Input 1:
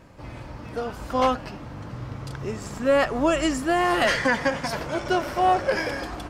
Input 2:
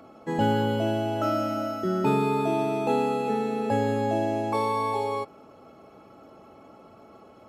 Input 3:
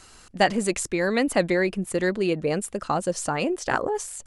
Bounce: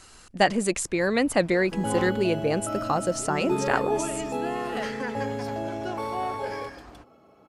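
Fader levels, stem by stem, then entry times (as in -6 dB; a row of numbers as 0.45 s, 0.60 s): -12.5 dB, -6.0 dB, -0.5 dB; 0.75 s, 1.45 s, 0.00 s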